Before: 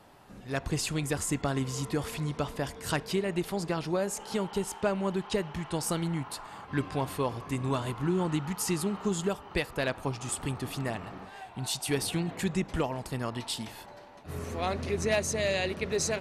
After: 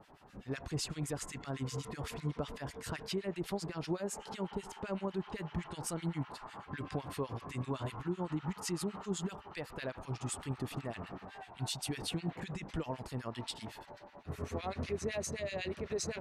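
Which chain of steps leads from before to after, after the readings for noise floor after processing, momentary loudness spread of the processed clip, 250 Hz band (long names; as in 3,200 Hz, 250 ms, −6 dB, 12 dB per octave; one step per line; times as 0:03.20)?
−56 dBFS, 7 LU, −7.5 dB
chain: high-shelf EQ 8,600 Hz −11.5 dB
brickwall limiter −26.5 dBFS, peak gain reduction 9 dB
two-band tremolo in antiphase 7.9 Hz, depth 100%, crossover 1,400 Hz
level +1 dB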